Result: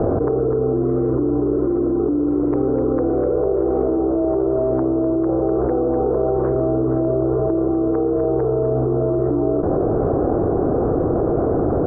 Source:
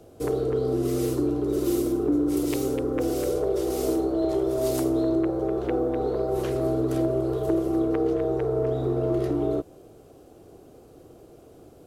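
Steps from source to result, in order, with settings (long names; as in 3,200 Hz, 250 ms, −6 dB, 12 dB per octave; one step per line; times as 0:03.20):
Butterworth low-pass 1,400 Hz 36 dB per octave
envelope flattener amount 100%
level +1.5 dB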